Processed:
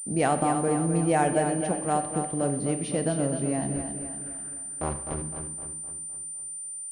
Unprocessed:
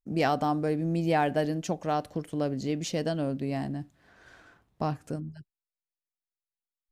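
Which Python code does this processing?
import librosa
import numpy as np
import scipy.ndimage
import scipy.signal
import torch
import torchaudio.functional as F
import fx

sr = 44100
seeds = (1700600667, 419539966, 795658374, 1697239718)

y = fx.cycle_switch(x, sr, every=2, mode='muted', at=(3.76, 5.22))
y = fx.high_shelf(y, sr, hz=3400.0, db=-9.0)
y = fx.echo_feedback(y, sr, ms=256, feedback_pct=51, wet_db=-8)
y = fx.rev_schroeder(y, sr, rt60_s=0.85, comb_ms=28, drr_db=9.5)
y = fx.pwm(y, sr, carrier_hz=9100.0)
y = y * 10.0 ** (2.0 / 20.0)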